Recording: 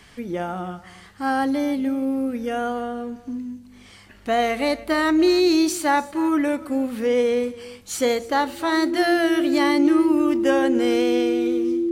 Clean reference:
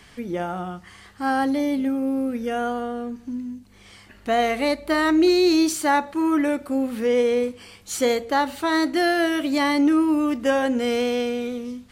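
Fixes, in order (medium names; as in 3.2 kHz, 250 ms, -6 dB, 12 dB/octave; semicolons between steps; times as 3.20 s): band-stop 340 Hz, Q 30; inverse comb 291 ms -18.5 dB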